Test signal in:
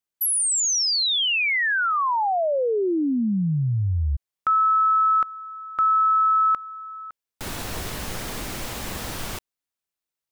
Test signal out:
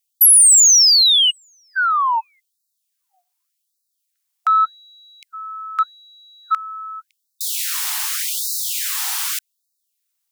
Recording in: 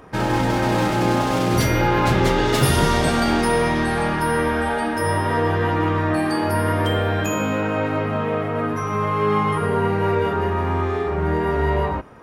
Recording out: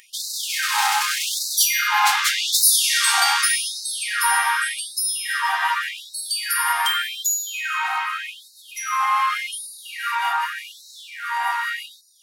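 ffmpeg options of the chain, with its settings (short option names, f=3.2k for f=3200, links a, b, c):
-af "highshelf=f=3.8k:g=11.5,acontrast=62,afftfilt=real='re*gte(b*sr/1024,700*pow(3800/700,0.5+0.5*sin(2*PI*0.85*pts/sr)))':imag='im*gte(b*sr/1024,700*pow(3800/700,0.5+0.5*sin(2*PI*0.85*pts/sr)))':win_size=1024:overlap=0.75,volume=-2dB"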